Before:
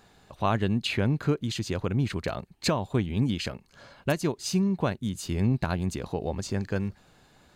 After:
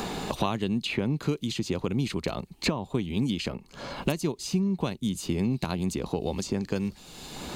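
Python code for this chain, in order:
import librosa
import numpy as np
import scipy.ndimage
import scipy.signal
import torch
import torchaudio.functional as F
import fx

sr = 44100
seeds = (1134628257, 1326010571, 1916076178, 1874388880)

y = fx.graphic_eq_15(x, sr, hz=(100, 630, 1600), db=(-10, -5, -10))
y = fx.band_squash(y, sr, depth_pct=100)
y = F.gain(torch.from_numpy(y), 1.0).numpy()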